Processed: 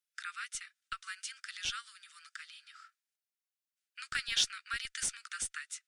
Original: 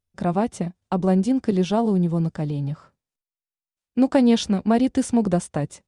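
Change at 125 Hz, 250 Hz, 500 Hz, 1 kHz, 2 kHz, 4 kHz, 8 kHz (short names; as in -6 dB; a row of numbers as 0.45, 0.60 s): -39.5 dB, under -40 dB, under -40 dB, -18.0 dB, 0.0 dB, 0.0 dB, 0.0 dB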